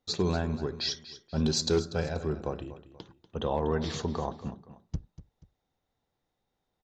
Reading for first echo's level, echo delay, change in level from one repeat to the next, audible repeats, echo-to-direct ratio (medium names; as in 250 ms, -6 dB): -15.0 dB, 241 ms, -8.5 dB, 2, -14.5 dB